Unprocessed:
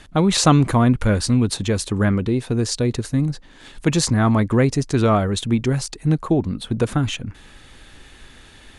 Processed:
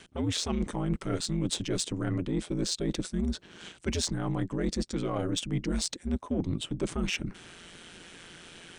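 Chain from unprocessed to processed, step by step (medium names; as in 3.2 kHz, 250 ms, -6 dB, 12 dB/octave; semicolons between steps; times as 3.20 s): high-pass 160 Hz 12 dB/octave; ring modulator 86 Hz; reverse; compression 10:1, threshold -27 dBFS, peak gain reduction 16 dB; reverse; formant shift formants -2 st; peaking EQ 1.1 kHz -5.5 dB 1.5 oct; in parallel at -6 dB: saturation -32 dBFS, distortion -9 dB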